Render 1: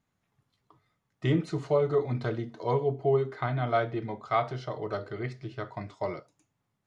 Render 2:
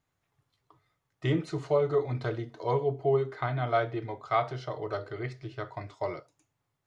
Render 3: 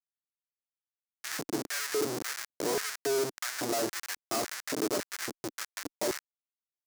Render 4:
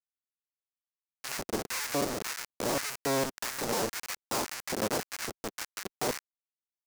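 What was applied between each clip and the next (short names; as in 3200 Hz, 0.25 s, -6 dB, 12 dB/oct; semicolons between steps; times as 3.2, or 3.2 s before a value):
bell 210 Hz -14 dB 0.39 oct
Schmitt trigger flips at -35.5 dBFS; resonant high shelf 4100 Hz +7.5 dB, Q 1.5; LFO high-pass square 1.8 Hz 300–1700 Hz
cycle switcher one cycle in 3, inverted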